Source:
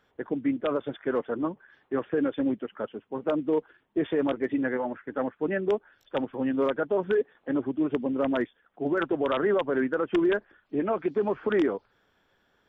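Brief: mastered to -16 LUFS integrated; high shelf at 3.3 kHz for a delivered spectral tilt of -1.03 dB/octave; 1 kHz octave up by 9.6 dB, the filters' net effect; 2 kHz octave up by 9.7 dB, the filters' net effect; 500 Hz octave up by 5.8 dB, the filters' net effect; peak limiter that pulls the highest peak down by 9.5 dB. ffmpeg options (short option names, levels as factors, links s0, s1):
-af "equalizer=f=500:t=o:g=5,equalizer=f=1000:t=o:g=8,equalizer=f=2000:t=o:g=7.5,highshelf=f=3300:g=6,volume=3.55,alimiter=limit=0.562:level=0:latency=1"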